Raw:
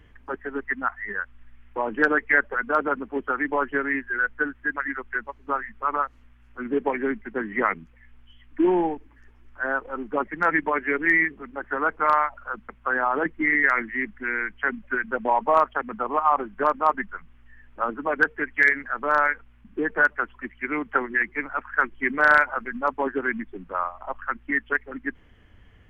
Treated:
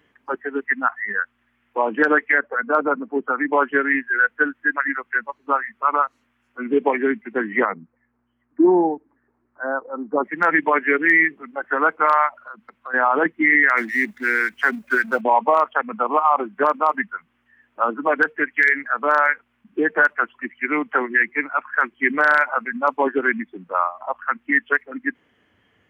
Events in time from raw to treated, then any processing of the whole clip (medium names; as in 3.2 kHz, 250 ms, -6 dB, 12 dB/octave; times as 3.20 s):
2.38–3.53 s: low-pass 1.4 kHz 6 dB/octave
7.65–10.24 s: Bessel low-pass 1 kHz, order 4
12.35–12.94 s: compression 3:1, threshold -38 dBFS
13.77–15.21 s: companding laws mixed up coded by mu
whole clip: spectral noise reduction 8 dB; high-pass 220 Hz 12 dB/octave; peak limiter -12.5 dBFS; trim +6.5 dB